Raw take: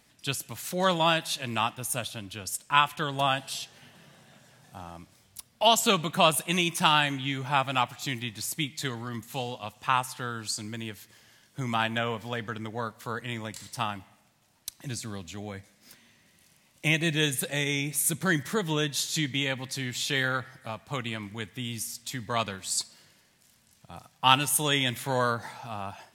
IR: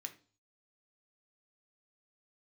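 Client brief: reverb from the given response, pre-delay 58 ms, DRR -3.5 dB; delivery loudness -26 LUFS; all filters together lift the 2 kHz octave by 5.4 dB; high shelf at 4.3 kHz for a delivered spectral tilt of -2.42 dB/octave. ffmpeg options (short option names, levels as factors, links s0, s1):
-filter_complex "[0:a]equalizer=f=2000:t=o:g=5.5,highshelf=f=4300:g=7,asplit=2[s0][s1];[1:a]atrim=start_sample=2205,adelay=58[s2];[s1][s2]afir=irnorm=-1:irlink=0,volume=2.24[s3];[s0][s3]amix=inputs=2:normalize=0,volume=0.447"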